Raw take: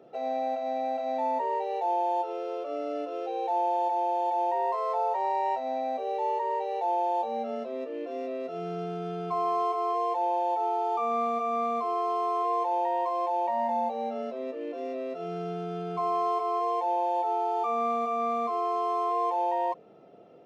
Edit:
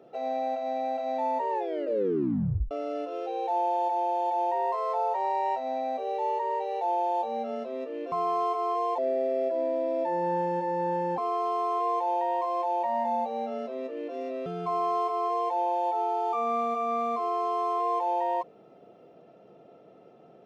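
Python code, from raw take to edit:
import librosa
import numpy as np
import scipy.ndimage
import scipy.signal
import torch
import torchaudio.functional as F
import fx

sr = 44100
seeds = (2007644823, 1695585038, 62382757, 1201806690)

y = fx.edit(x, sr, fx.tape_stop(start_s=1.5, length_s=1.21),
    fx.cut(start_s=8.12, length_s=1.19),
    fx.speed_span(start_s=10.17, length_s=1.65, speed=0.75),
    fx.cut(start_s=15.1, length_s=0.67), tone=tone)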